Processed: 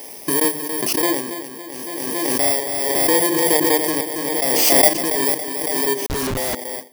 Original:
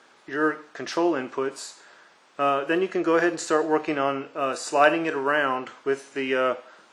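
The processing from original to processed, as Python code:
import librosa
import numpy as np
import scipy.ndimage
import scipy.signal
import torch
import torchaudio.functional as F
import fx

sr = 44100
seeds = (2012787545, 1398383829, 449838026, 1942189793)

p1 = fx.bit_reversed(x, sr, seeds[0], block=32)
p2 = fx.step_gate(p1, sr, bpm=146, pattern='....xxx.x.xxx', floor_db=-24.0, edge_ms=4.5)
p3 = fx.hum_notches(p2, sr, base_hz=50, count=8)
p4 = p3 + fx.echo_feedback(p3, sr, ms=279, feedback_pct=51, wet_db=-10.5, dry=0)
p5 = fx.schmitt(p4, sr, flips_db=-38.0, at=(6.06, 6.55))
p6 = fx.pre_swell(p5, sr, db_per_s=22.0)
y = p6 * librosa.db_to_amplitude(4.0)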